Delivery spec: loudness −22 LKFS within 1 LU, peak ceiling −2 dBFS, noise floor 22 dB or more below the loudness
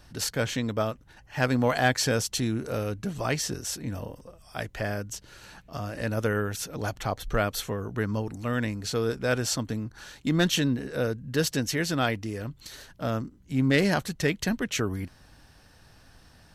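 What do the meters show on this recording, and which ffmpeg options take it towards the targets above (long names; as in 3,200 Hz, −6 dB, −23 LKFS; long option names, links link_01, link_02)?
integrated loudness −28.5 LKFS; sample peak −9.5 dBFS; target loudness −22.0 LKFS
→ -af "volume=6.5dB"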